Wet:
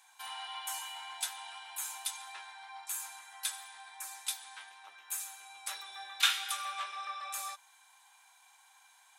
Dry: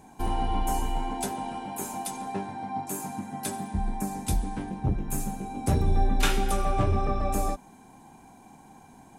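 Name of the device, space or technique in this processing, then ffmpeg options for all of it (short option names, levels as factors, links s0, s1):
headphones lying on a table: -af "highpass=f=1200:w=0.5412,highpass=f=1200:w=1.3066,equalizer=f=3600:t=o:w=0.48:g=8,volume=0.841"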